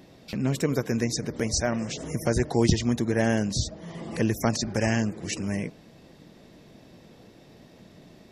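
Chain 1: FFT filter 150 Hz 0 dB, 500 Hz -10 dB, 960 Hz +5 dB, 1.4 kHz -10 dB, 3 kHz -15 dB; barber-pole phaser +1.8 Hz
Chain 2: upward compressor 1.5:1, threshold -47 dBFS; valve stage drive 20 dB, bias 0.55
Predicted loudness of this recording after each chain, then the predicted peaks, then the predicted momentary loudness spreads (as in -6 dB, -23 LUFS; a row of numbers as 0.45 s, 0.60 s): -34.0 LUFS, -30.0 LUFS; -14.5 dBFS, -16.5 dBFS; 10 LU, 7 LU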